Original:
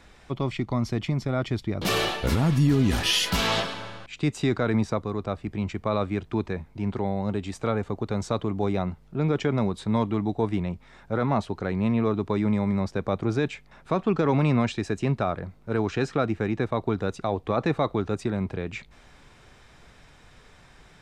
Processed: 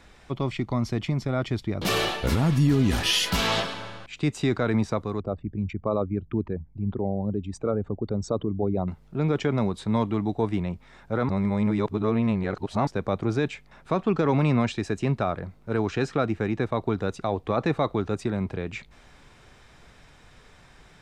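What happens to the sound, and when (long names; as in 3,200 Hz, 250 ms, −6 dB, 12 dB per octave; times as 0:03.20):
0:05.20–0:08.88: spectral envelope exaggerated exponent 2
0:11.29–0:12.87: reverse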